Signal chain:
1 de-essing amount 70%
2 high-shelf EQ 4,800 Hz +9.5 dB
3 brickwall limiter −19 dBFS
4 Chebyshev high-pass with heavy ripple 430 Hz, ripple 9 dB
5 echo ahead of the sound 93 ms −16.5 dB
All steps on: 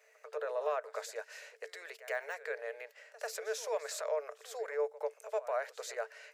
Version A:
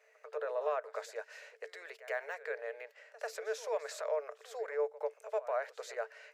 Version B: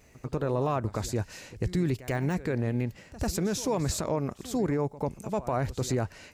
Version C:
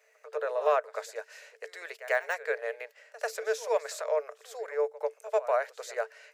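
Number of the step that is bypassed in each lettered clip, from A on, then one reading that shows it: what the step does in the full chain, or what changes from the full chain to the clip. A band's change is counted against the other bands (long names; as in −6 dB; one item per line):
2, 8 kHz band −6.0 dB
4, 2 kHz band −6.5 dB
3, average gain reduction 2.5 dB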